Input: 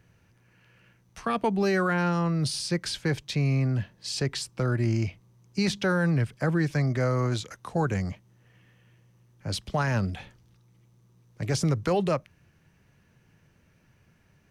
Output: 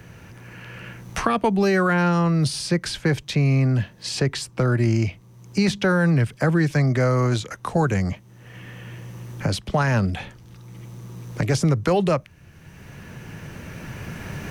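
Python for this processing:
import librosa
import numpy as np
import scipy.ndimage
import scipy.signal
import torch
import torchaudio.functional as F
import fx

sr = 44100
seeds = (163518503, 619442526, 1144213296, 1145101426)

y = fx.recorder_agc(x, sr, target_db=-22.5, rise_db_per_s=8.2, max_gain_db=30)
y = fx.peak_eq(y, sr, hz=4700.0, db=-2.0, octaves=0.77)
y = fx.band_squash(y, sr, depth_pct=40)
y = y * librosa.db_to_amplitude(6.0)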